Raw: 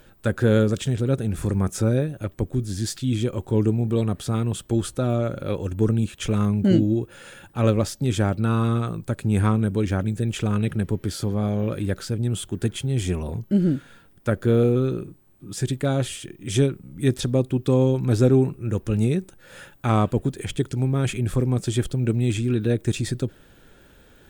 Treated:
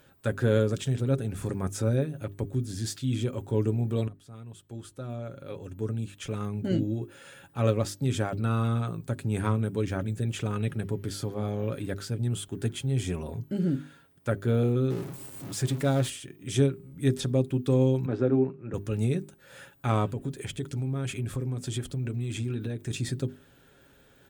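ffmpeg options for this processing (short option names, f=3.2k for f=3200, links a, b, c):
-filter_complex "[0:a]asettb=1/sr,asplit=3[a][b][c];[a]atrim=end=14.904[d];[b]atrim=start=14.9:end=16.1,asetpts=PTS-STARTPTS,afade=t=in:d=0.004:c=qsin,afade=t=out:st=1.196:d=0.004:c=qsin,aeval=exprs='val(0)+0.5*0.0266*sgn(val(0))':c=same[e];[c]atrim=start=16.096[f];[d][e]acrossfade=d=0.004:c1=hsin:c2=qsin[g];[g][f]acrossfade=d=0.004:c1=qsin:c2=hsin,asettb=1/sr,asplit=3[h][i][j];[h]atrim=end=18.064[k];[i]atrim=start=18.06:end=18.74,asetpts=PTS-STARTPTS,afade=t=in:d=0.004:c=qsin,afade=t=out:st=0.676:d=0.004:c=qsin,highpass=190,lowpass=2k[l];[j]atrim=start=18.736[m];[k][l]acrossfade=d=0.004:c1=hsin:c2=qsin[n];[n][m]acrossfade=d=0.004:c1=qsin:c2=hsin,asplit=3[o][p][q];[o]afade=t=out:st=20.07:d=0.02[r];[p]acompressor=threshold=-22dB:ratio=6:attack=3.2:release=140:knee=1:detection=peak,afade=t=in:st=20.07:d=0.02,afade=t=out:st=22.9:d=0.02[s];[q]afade=t=in:st=22.9:d=0.02[t];[r][s][t]amix=inputs=3:normalize=0,asplit=2[u][v];[u]atrim=end=4.08,asetpts=PTS-STARTPTS,afade=t=out:st=4.076:d=0.004:c=hsin:silence=0.0841395[w];[v]atrim=start=4.08,asetpts=PTS-STARTPTS,afade=t=in:d=3.53:silence=0.0841395[x];[w][x]concat=n=2:v=0:a=1,highpass=50,bandreject=f=50:t=h:w=6,bandreject=f=100:t=h:w=6,bandreject=f=150:t=h:w=6,bandreject=f=200:t=h:w=6,bandreject=f=250:t=h:w=6,bandreject=f=300:t=h:w=6,bandreject=f=350:t=h:w=6,bandreject=f=400:t=h:w=6,aecho=1:1:7.3:0.35,volume=-5.5dB"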